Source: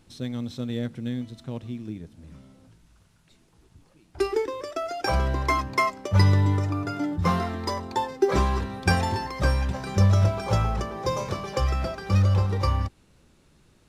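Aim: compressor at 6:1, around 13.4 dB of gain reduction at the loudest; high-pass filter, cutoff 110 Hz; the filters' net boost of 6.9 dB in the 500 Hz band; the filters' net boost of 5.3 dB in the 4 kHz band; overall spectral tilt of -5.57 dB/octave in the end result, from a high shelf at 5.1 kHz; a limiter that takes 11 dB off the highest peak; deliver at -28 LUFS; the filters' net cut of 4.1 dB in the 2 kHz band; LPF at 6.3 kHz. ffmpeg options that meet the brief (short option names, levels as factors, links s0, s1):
-af "highpass=110,lowpass=6300,equalizer=f=500:t=o:g=9,equalizer=f=2000:t=o:g=-8,equalizer=f=4000:t=o:g=6.5,highshelf=f=5100:g=6.5,acompressor=threshold=0.0562:ratio=6,volume=1.58,alimiter=limit=0.133:level=0:latency=1"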